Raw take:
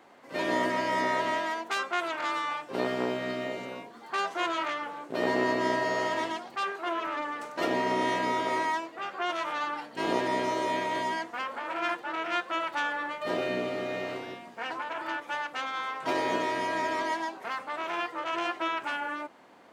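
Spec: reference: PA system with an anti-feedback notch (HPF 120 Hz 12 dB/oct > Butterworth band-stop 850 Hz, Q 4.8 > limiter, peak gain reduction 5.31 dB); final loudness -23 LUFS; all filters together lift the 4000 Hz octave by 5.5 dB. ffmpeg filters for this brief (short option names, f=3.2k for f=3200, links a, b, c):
-af "highpass=120,asuperstop=centerf=850:order=8:qfactor=4.8,equalizer=f=4k:t=o:g=7.5,volume=8dB,alimiter=limit=-12.5dB:level=0:latency=1"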